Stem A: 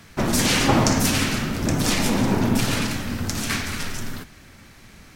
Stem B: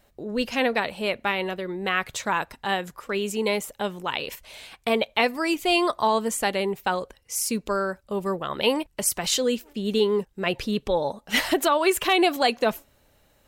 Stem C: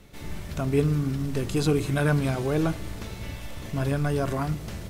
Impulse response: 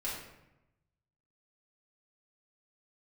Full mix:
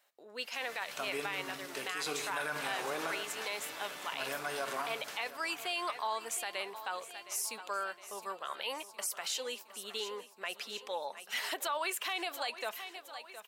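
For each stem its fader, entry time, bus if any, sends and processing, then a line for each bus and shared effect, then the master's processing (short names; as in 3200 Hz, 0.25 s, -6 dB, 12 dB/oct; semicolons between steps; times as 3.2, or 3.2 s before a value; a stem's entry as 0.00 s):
-18.5 dB, 2.15 s, no send, no echo send, LPF 1500 Hz
-7.0 dB, 0.00 s, no send, echo send -15.5 dB, dry
-3.0 dB, 0.40 s, send -8 dB, echo send -14 dB, dry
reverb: on, RT60 0.90 s, pre-delay 4 ms
echo: feedback echo 0.714 s, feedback 59%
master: HPF 860 Hz 12 dB/oct; limiter -25.5 dBFS, peak gain reduction 10.5 dB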